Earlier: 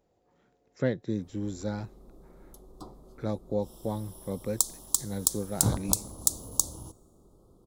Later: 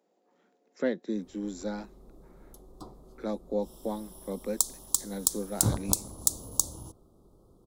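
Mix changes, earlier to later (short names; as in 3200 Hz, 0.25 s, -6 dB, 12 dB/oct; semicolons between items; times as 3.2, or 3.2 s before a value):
speech: add steep high-pass 190 Hz 48 dB/oct; reverb: off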